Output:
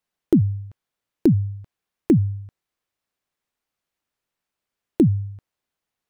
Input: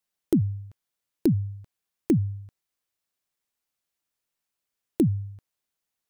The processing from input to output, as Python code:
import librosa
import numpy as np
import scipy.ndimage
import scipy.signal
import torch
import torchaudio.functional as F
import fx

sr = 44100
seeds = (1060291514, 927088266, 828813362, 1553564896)

y = fx.high_shelf(x, sr, hz=4100.0, db=-10.5)
y = y * 10.0 ** (5.5 / 20.0)